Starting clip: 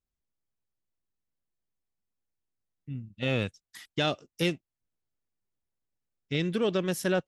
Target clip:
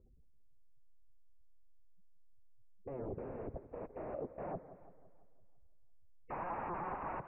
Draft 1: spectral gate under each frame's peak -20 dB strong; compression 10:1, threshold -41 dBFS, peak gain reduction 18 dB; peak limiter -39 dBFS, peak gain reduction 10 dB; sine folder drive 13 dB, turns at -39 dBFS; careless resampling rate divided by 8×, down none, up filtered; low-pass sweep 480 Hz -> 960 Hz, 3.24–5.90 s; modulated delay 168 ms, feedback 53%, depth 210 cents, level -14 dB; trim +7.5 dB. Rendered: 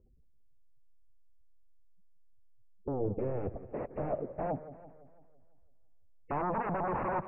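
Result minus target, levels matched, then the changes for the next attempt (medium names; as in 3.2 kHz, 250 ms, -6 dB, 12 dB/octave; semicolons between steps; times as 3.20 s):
sine folder: distortion -14 dB
change: sine folder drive 13 dB, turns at -47 dBFS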